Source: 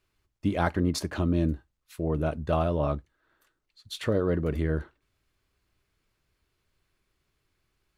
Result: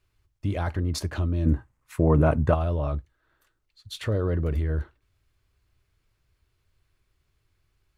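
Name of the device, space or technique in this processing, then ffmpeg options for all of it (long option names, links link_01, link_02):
car stereo with a boomy subwoofer: -filter_complex "[0:a]lowshelf=frequency=140:width_type=q:width=1.5:gain=6.5,alimiter=limit=-18dB:level=0:latency=1:release=19,asplit=3[link_01][link_02][link_03];[link_01]afade=type=out:start_time=1.45:duration=0.02[link_04];[link_02]equalizer=frequency=125:width_type=o:width=1:gain=9,equalizer=frequency=250:width_type=o:width=1:gain=9,equalizer=frequency=500:width_type=o:width=1:gain=5,equalizer=frequency=1000:width_type=o:width=1:gain=12,equalizer=frequency=2000:width_type=o:width=1:gain=8,equalizer=frequency=4000:width_type=o:width=1:gain=-5,equalizer=frequency=8000:width_type=o:width=1:gain=6,afade=type=in:start_time=1.45:duration=0.02,afade=type=out:start_time=2.53:duration=0.02[link_05];[link_03]afade=type=in:start_time=2.53:duration=0.02[link_06];[link_04][link_05][link_06]amix=inputs=3:normalize=0"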